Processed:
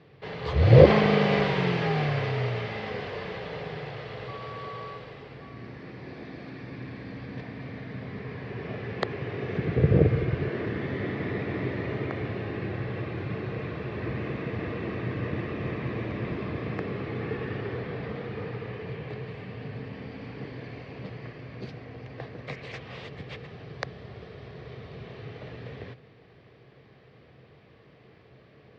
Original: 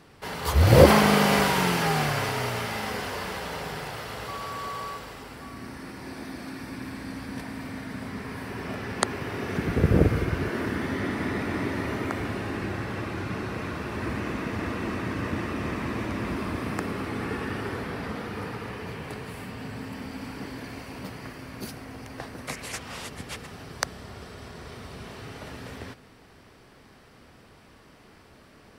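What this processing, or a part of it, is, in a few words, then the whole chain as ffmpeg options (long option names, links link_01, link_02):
guitar cabinet: -af "highpass=76,equalizer=frequency=130:width_type=q:width=4:gain=9,equalizer=frequency=250:width_type=q:width=4:gain=-6,equalizer=frequency=460:width_type=q:width=4:gain=5,equalizer=frequency=920:width_type=q:width=4:gain=-7,equalizer=frequency=1400:width_type=q:width=4:gain=-8,equalizer=frequency=2900:width_type=q:width=4:gain=-3,lowpass=frequency=3700:width=0.5412,lowpass=frequency=3700:width=1.3066,volume=-1.5dB"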